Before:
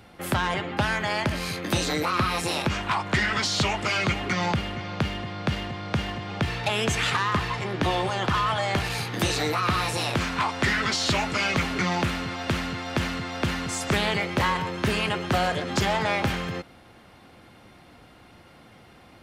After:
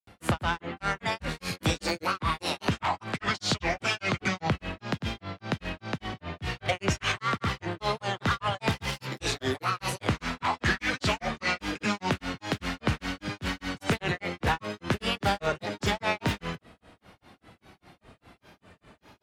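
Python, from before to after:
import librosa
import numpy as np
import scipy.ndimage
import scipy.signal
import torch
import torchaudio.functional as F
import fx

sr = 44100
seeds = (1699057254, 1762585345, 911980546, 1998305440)

y = fx.granulator(x, sr, seeds[0], grain_ms=189.0, per_s=5.0, spray_ms=100.0, spread_st=3)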